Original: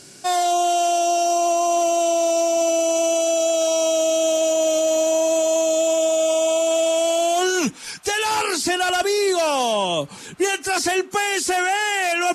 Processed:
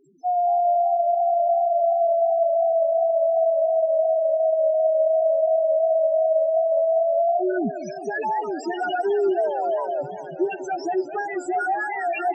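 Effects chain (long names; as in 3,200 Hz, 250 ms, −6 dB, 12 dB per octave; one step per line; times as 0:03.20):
spectral peaks only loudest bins 2
feedback echo with a swinging delay time 202 ms, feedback 78%, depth 214 cents, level −13.5 dB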